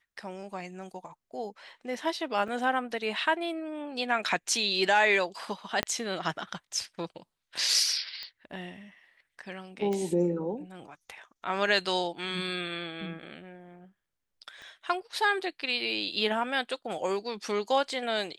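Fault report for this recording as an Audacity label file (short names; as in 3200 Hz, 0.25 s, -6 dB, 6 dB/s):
2.480000	2.480000	gap 3 ms
5.830000	5.830000	pop -12 dBFS
8.230000	8.230000	pop -24 dBFS
9.930000	9.930000	pop -21 dBFS
14.620000	14.620000	pop -35 dBFS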